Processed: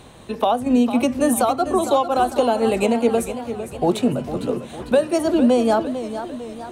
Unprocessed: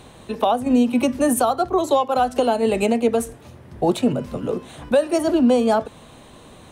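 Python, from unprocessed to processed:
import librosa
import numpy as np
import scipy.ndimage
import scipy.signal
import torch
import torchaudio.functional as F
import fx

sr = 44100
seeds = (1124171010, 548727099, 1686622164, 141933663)

y = fx.echo_warbled(x, sr, ms=452, feedback_pct=51, rate_hz=2.8, cents=115, wet_db=-11)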